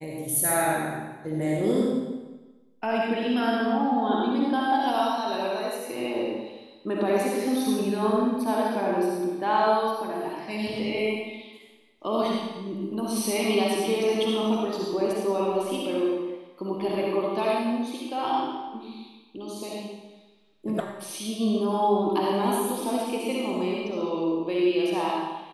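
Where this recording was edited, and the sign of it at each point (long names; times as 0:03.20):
0:20.80: cut off before it has died away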